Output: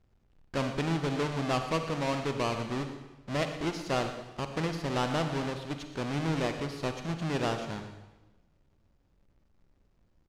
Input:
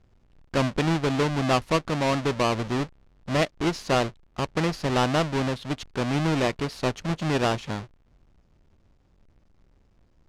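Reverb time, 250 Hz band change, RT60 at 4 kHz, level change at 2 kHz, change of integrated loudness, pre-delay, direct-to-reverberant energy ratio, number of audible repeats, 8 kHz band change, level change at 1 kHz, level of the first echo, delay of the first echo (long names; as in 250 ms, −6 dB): 1.1 s, −6.5 dB, 1.0 s, −6.5 dB, −6.5 dB, 39 ms, 6.5 dB, 1, −6.5 dB, −6.5 dB, −14.0 dB, 120 ms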